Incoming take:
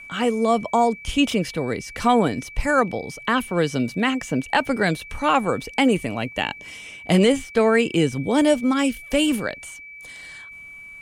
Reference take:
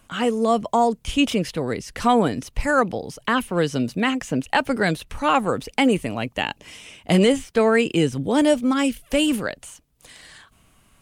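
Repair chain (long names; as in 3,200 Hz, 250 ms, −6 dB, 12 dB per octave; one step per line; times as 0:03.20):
notch filter 2,300 Hz, Q 30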